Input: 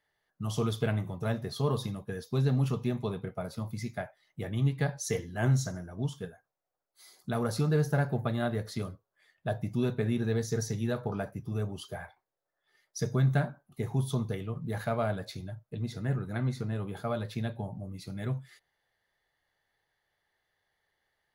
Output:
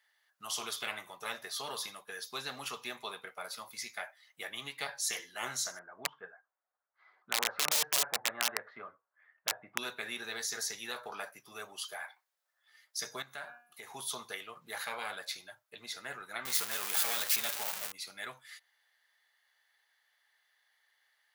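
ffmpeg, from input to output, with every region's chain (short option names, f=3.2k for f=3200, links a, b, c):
-filter_complex "[0:a]asettb=1/sr,asplit=3[a][b][c];[a]atrim=end=5.794[d];[b]atrim=start=5.79:end=9.78,asetpts=PTS-STARTPTS,afade=t=in:d=0.004:c=qsin,afade=t=out:st=3.986:d=0.004:c=qsin,lowpass=f=1.7k:w=0.5412,lowpass=f=1.7k:w=1.3066,aeval=exprs='(mod(11.9*val(0)+1,2)-1)/11.9':c=same[e];[c]atrim=start=9.776[f];[d][e]acrossfade=d=0.004:c1=hsin:c2=qsin[g];[g][f]acrossfade=d=0.004:c1=qsin:c2=hsin,asettb=1/sr,asplit=3[h][i][j];[h]atrim=end=13.224[k];[i]atrim=start=13.22:end=13.9,asetpts=PTS-STARTPTS,afade=t=in:d=0.004:c=qsin,afade=t=out:st=0.676:d=0.004:c=qsin,bandreject=f=240.1:t=h:w=4,bandreject=f=480.2:t=h:w=4,bandreject=f=720.3:t=h:w=4,bandreject=f=960.4:t=h:w=4,bandreject=f=1.2005k:t=h:w=4,bandreject=f=1.4406k:t=h:w=4,bandreject=f=1.6807k:t=h:w=4,bandreject=f=1.9208k:t=h:w=4,bandreject=f=2.1609k:t=h:w=4,bandreject=f=2.401k:t=h:w=4,bandreject=f=2.6411k:t=h:w=4,bandreject=f=2.8812k:t=h:w=4,acompressor=threshold=-37dB:ratio=2.5:attack=3.2:release=140:knee=1:detection=peak[l];[j]atrim=start=13.896[m];[k][l]acrossfade=d=0.004:c1=hsin:c2=qsin[n];[n][m]acrossfade=d=0.004:c1=qsin:c2=hsin,asettb=1/sr,asplit=3[o][p][q];[o]atrim=end=16.454[r];[p]atrim=start=16.45:end=17.92,asetpts=PTS-STARTPTS,afade=t=in:d=0.004:c=qsin,afade=t=out:st=1.466:d=0.004:c=qsin,aeval=exprs='val(0)+0.5*0.0158*sgn(val(0))':c=same,aemphasis=mode=production:type=50kf[s];[q]atrim=start=17.916[t];[r][s]acrossfade=d=0.004:c1=hsin:c2=qsin[u];[u][t]acrossfade=d=0.004:c1=qsin:c2=hsin,highpass=1.3k,afftfilt=real='re*lt(hypot(re,im),0.0355)':imag='im*lt(hypot(re,im),0.0355)':win_size=1024:overlap=0.75,volume=7.5dB"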